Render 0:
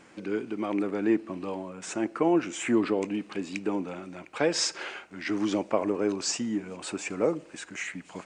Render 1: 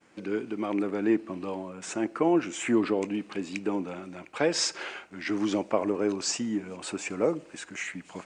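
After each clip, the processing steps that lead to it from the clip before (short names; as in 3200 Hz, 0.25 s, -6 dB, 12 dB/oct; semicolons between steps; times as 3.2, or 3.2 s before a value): expander -49 dBFS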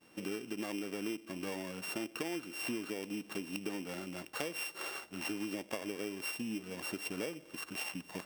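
sample sorter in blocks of 16 samples; compressor 10:1, threshold -34 dBFS, peak gain reduction 15.5 dB; gain -1.5 dB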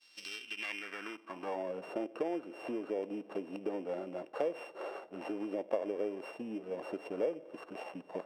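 band-pass sweep 4400 Hz -> 560 Hz, 0.21–1.73; gain +10.5 dB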